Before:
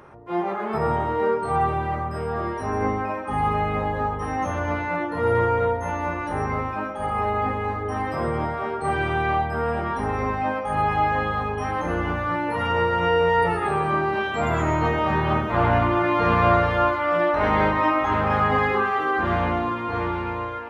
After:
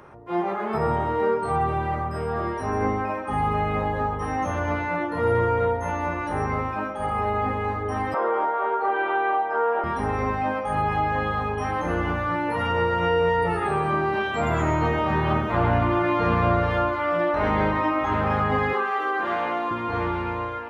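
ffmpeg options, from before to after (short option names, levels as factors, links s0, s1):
-filter_complex "[0:a]asettb=1/sr,asplit=3[s0][s1][s2];[s0]atrim=end=8.144[s3];[s1]atrim=start=8.14:end=9.84,asetpts=PTS-STARTPTS,afade=t=in:d=0.004:c=qsin,afade=t=out:st=1.696:d=0.004:c=qsin,highpass=f=350:w=0.5412,highpass=f=350:w=1.3066,equalizer=f=480:t=q:w=4:g=5,equalizer=f=900:t=q:w=4:g=10,equalizer=f=1400:t=q:w=4:g=7,equalizer=f=2300:t=q:w=4:g=-3,lowpass=f=3500:w=0.5412,lowpass=f=3500:w=1.3066[s4];[s2]atrim=start=9.836[s5];[s3][s4]acrossfade=d=0.004:c1=hsin:c2=qsin[s6];[s6][s5]acrossfade=d=0.004:c1=qsin:c2=hsin,asettb=1/sr,asplit=3[s7][s8][s9];[s7]atrim=end=18.734[s10];[s8]atrim=start=18.73:end=19.71,asetpts=PTS-STARTPTS,afade=t=in:d=0.004:c=qsin,afade=t=out:st=0.976:d=0.004:c=qsin,highpass=390[s11];[s9]atrim=start=19.706[s12];[s10][s11]acrossfade=d=0.004:c1=hsin:c2=qsin[s13];[s13][s12]acrossfade=d=0.004:c1=qsin:c2=hsin,acrossover=split=480[s14][s15];[s15]acompressor=threshold=0.0794:ratio=6[s16];[s14][s16]amix=inputs=2:normalize=0"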